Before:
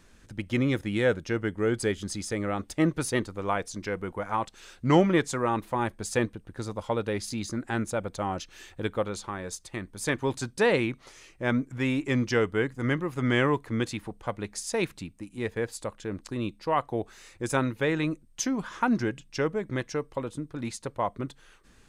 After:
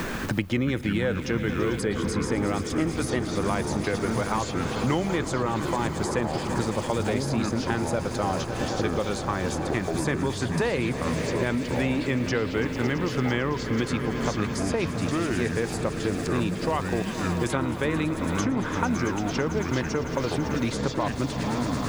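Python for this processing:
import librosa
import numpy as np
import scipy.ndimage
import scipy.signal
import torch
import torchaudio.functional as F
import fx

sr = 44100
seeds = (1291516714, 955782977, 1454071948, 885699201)

p1 = fx.high_shelf(x, sr, hz=7300.0, db=-6.0)
p2 = fx.over_compress(p1, sr, threshold_db=-31.0, ratio=-1.0)
p3 = p1 + F.gain(torch.from_numpy(p2), -1.5).numpy()
p4 = fx.echo_pitch(p3, sr, ms=125, semitones=-6, count=3, db_per_echo=-6.0)
p5 = fx.dmg_noise_colour(p4, sr, seeds[0], colour='violet', level_db=-64.0)
p6 = p5 + fx.echo_swell(p5, sr, ms=111, loudest=5, wet_db=-16.5, dry=0)
p7 = fx.band_squash(p6, sr, depth_pct=100)
y = F.gain(torch.from_numpy(p7), -3.5).numpy()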